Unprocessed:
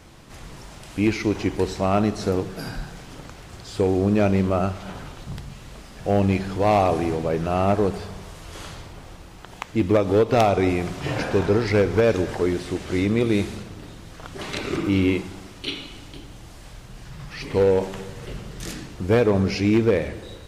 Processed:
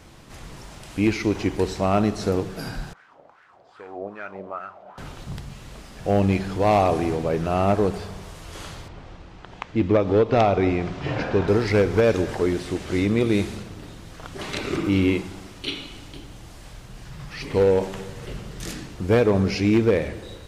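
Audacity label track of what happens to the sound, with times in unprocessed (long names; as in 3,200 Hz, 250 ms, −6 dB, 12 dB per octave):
2.930000	4.980000	LFO wah 2.5 Hz 600–1,600 Hz, Q 3.7
8.880000	11.480000	high-frequency loss of the air 130 metres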